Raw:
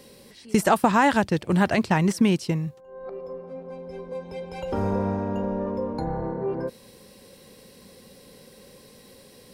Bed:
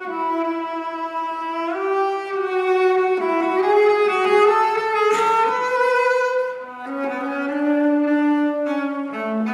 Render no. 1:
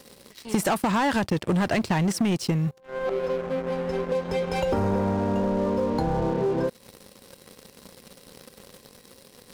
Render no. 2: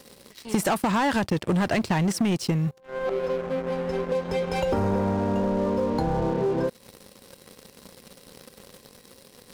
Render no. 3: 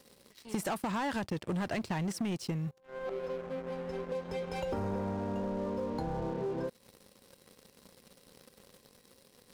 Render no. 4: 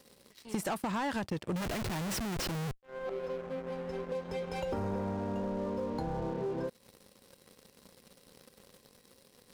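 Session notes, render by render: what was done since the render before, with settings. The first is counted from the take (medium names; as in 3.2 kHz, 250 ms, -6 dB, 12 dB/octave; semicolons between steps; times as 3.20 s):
waveshaping leveller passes 3; compression 6:1, threshold -22 dBFS, peak gain reduction 11.5 dB
no audible change
trim -10.5 dB
1.56–2.83 s: Schmitt trigger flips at -48.5 dBFS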